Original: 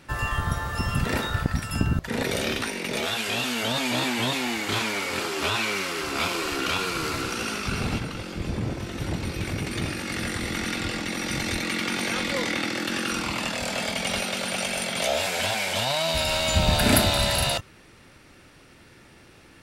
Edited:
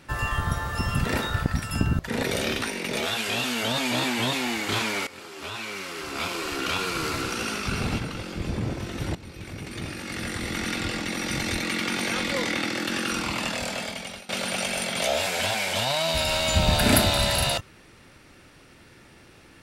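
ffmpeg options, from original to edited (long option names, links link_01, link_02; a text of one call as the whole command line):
ffmpeg -i in.wav -filter_complex "[0:a]asplit=4[link_01][link_02][link_03][link_04];[link_01]atrim=end=5.07,asetpts=PTS-STARTPTS,afade=type=out:start_time=5.066:duration=0.004:curve=hsin:silence=0.141254[link_05];[link_02]atrim=start=5.07:end=9.15,asetpts=PTS-STARTPTS,afade=type=in:duration=1.93:silence=0.141254,afade=type=out:start_time=4.076:duration=0.004:curve=hsin:silence=0.199526[link_06];[link_03]atrim=start=9.15:end=14.29,asetpts=PTS-STARTPTS,afade=type=in:duration=1.57:silence=0.199526,afade=type=out:start_time=4.41:duration=0.73:silence=0.0707946[link_07];[link_04]atrim=start=14.29,asetpts=PTS-STARTPTS,afade=type=in:duration=0.004:curve=hsin:silence=0.0707946[link_08];[link_05][link_06][link_07][link_08]concat=n=4:v=0:a=1" out.wav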